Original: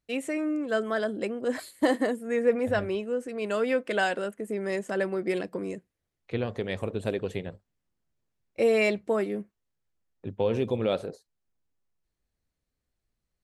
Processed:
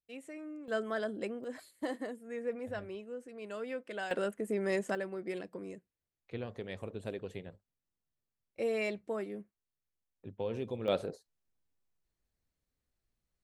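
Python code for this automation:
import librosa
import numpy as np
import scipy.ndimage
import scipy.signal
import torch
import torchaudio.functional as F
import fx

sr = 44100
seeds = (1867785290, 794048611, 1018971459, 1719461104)

y = fx.gain(x, sr, db=fx.steps((0.0, -16.0), (0.68, -7.0), (1.44, -13.5), (4.11, -2.0), (4.95, -10.5), (10.88, -3.0)))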